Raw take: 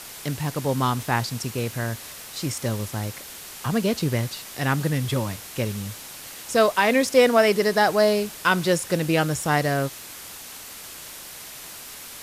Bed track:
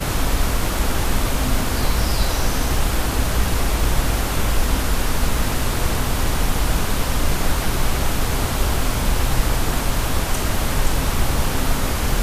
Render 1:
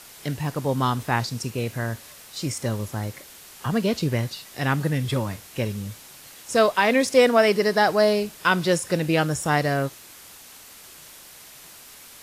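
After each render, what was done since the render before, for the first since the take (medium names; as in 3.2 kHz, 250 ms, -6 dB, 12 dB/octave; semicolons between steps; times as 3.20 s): noise print and reduce 6 dB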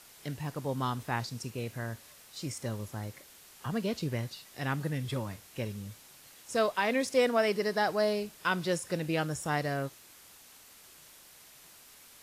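trim -9.5 dB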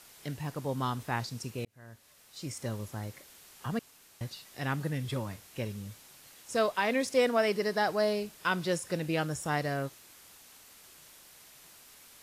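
1.65–2.65 s: fade in; 3.79–4.21 s: room tone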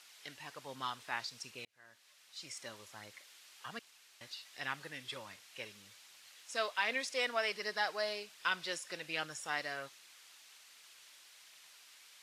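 band-pass filter 3.1 kHz, Q 0.69; phaser 1.3 Hz, delay 3.6 ms, feedback 26%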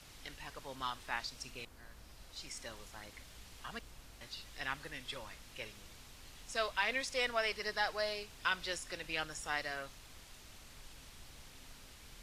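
add bed track -37.5 dB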